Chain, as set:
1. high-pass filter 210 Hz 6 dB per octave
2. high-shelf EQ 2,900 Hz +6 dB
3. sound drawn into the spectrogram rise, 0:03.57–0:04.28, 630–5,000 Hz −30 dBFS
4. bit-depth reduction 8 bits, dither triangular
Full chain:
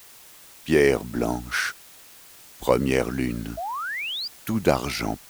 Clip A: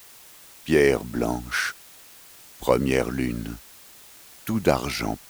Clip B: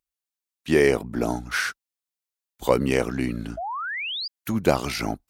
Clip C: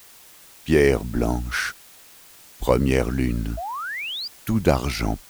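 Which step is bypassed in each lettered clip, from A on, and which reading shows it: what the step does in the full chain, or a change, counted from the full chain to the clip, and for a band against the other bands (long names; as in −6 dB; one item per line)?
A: 3, change in momentary loudness spread +7 LU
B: 4, distortion level −22 dB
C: 1, change in crest factor −2.5 dB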